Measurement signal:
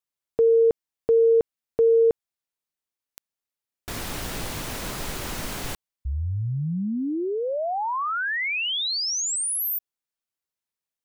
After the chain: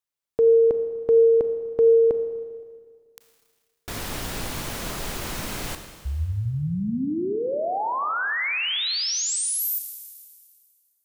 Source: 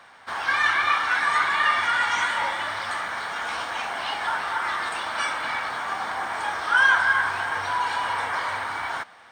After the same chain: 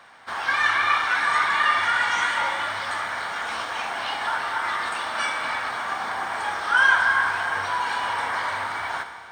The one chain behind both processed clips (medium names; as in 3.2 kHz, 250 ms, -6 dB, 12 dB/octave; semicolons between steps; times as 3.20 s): Schroeder reverb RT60 1.9 s, combs from 27 ms, DRR 7.5 dB